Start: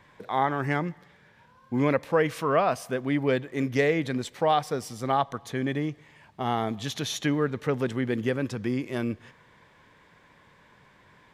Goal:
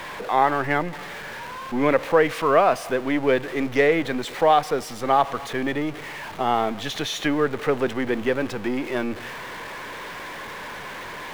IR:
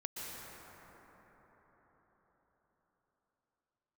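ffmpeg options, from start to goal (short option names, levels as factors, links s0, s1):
-filter_complex "[0:a]aeval=exprs='val(0)+0.5*0.02*sgn(val(0))':c=same,bass=f=250:g=-5,treble=f=4000:g=-9,acrossover=split=270[s0][s1];[s0]aeval=exprs='max(val(0),0)':c=same[s2];[s2][s1]amix=inputs=2:normalize=0,volume=1.88"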